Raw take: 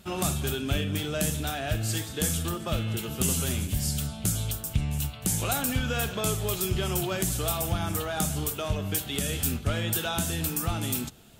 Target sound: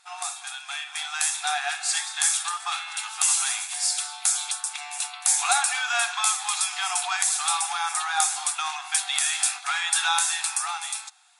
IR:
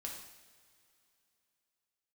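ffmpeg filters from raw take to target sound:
-af "dynaudnorm=f=110:g=17:m=3.76,afftfilt=real='re*between(b*sr/4096,700,11000)':imag='im*between(b*sr/4096,700,11000)':win_size=4096:overlap=0.75,bandreject=f=3000:w=5.6"

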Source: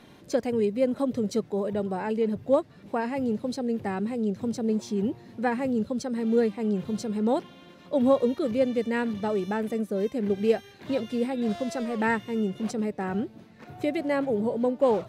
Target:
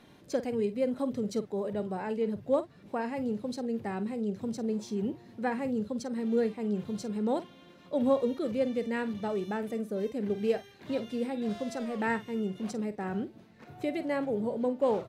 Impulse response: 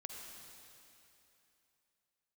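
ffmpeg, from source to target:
-filter_complex "[0:a]asplit=2[s0][s1];[s1]adelay=48,volume=0.211[s2];[s0][s2]amix=inputs=2:normalize=0,volume=0.562"

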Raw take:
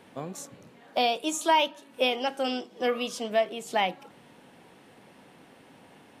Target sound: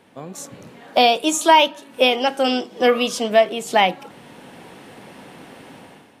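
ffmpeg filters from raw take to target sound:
-af "dynaudnorm=f=100:g=9:m=4.22"

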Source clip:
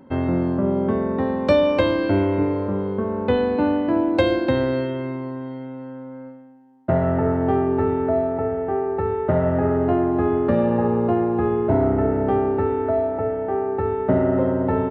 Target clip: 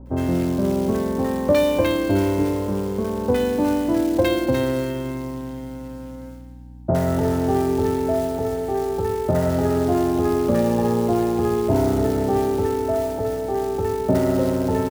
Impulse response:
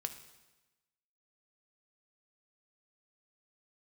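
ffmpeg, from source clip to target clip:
-filter_complex "[0:a]acrusher=bits=5:mode=log:mix=0:aa=0.000001,aeval=exprs='val(0)+0.0112*(sin(2*PI*60*n/s)+sin(2*PI*2*60*n/s)/2+sin(2*PI*3*60*n/s)/3+sin(2*PI*4*60*n/s)/4+sin(2*PI*5*60*n/s)/5)':c=same,acrossover=split=1100[s0][s1];[s1]adelay=60[s2];[s0][s2]amix=inputs=2:normalize=0"

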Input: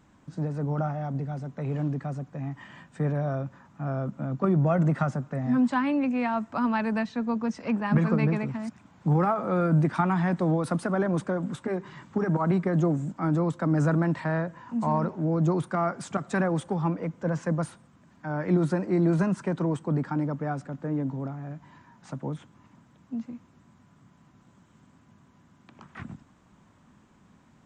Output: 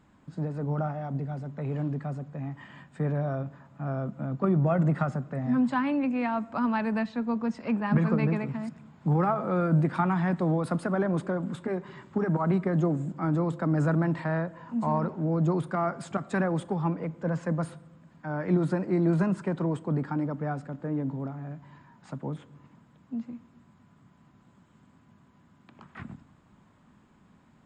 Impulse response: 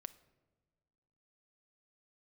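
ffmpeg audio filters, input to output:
-filter_complex "[0:a]bandreject=f=5900:w=6.2,asplit=2[s0][s1];[1:a]atrim=start_sample=2205,highshelf=f=8100:g=-12[s2];[s1][s2]afir=irnorm=-1:irlink=0,volume=2.37[s3];[s0][s3]amix=inputs=2:normalize=0,volume=0.376"

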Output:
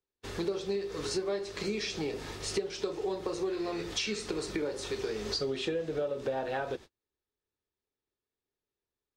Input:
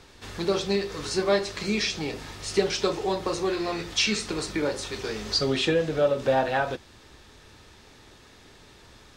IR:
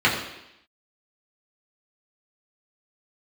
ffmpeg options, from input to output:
-af "agate=range=0.00794:threshold=0.00891:ratio=16:detection=peak,equalizer=f=410:t=o:w=0.71:g=8,acompressor=threshold=0.0355:ratio=5,volume=0.794"

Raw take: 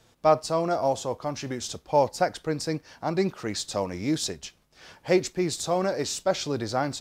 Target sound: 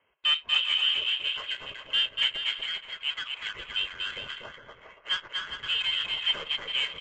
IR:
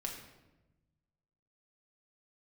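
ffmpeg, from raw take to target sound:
-filter_complex "[0:a]highpass=f=590:w=0.5412,highpass=f=590:w=1.3066,aecho=1:1:1.9:0.47,asoftclip=type=tanh:threshold=0.0794,aecho=1:1:240|408|525.6|607.9|665.5:0.631|0.398|0.251|0.158|0.1,lowpass=f=3100:t=q:w=0.5098,lowpass=f=3100:t=q:w=0.6013,lowpass=f=3100:t=q:w=0.9,lowpass=f=3100:t=q:w=2.563,afreqshift=-3700,asplit=2[s0][s1];[1:a]atrim=start_sample=2205,atrim=end_sample=3969[s2];[s1][s2]afir=irnorm=-1:irlink=0,volume=0.251[s3];[s0][s3]amix=inputs=2:normalize=0,adynamicsmooth=sensitivity=5.5:basefreq=1500" -ar 16000 -c:a libvorbis -b:a 64k

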